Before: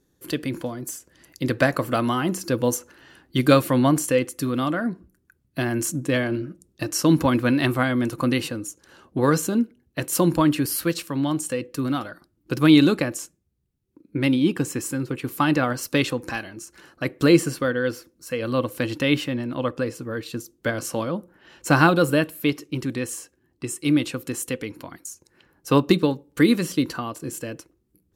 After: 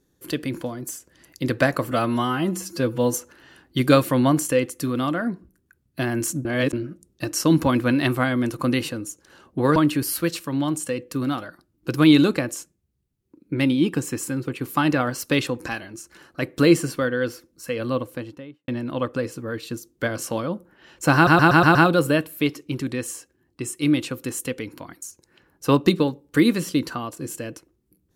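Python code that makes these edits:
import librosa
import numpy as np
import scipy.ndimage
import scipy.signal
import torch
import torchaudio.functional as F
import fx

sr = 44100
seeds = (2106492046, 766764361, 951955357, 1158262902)

y = fx.studio_fade_out(x, sr, start_s=18.34, length_s=0.97)
y = fx.edit(y, sr, fx.stretch_span(start_s=1.91, length_s=0.82, factor=1.5),
    fx.reverse_span(start_s=6.04, length_s=0.28),
    fx.cut(start_s=9.35, length_s=1.04),
    fx.stutter(start_s=21.78, slice_s=0.12, count=6), tone=tone)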